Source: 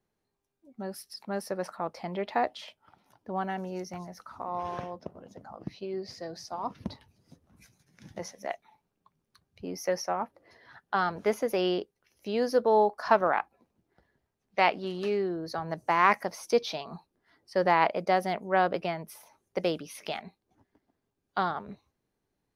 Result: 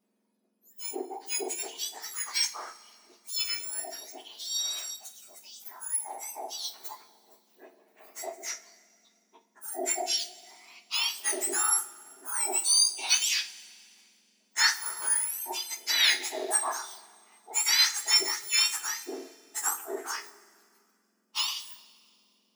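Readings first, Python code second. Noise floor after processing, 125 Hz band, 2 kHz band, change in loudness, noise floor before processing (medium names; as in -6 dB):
-72 dBFS, under -40 dB, +1.5 dB, +2.5 dB, -82 dBFS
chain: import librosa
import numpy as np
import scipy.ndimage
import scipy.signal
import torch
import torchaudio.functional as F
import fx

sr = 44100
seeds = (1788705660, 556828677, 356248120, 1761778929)

y = fx.octave_mirror(x, sr, pivot_hz=2000.0)
y = fx.rev_double_slope(y, sr, seeds[0], early_s=0.24, late_s=2.2, knee_db=-21, drr_db=3.5)
y = fx.end_taper(y, sr, db_per_s=290.0)
y = F.gain(torch.from_numpy(y), 3.5).numpy()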